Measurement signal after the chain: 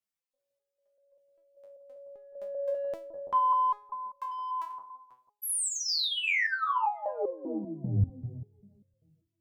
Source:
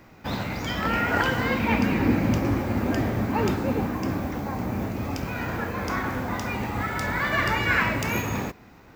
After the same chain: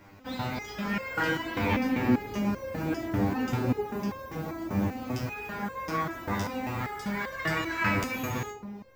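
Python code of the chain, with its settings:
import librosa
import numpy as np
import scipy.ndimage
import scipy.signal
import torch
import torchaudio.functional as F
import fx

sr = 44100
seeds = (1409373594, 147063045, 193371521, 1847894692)

p1 = 10.0 ** (-22.0 / 20.0) * np.tanh(x / 10.0 ** (-22.0 / 20.0))
p2 = x + (p1 * librosa.db_to_amplitude(-5.5))
p3 = fx.echo_bbd(p2, sr, ms=167, stages=1024, feedback_pct=57, wet_db=-8.5)
p4 = fx.resonator_held(p3, sr, hz=5.1, low_hz=99.0, high_hz=530.0)
y = p4 * librosa.db_to_amplitude(4.5)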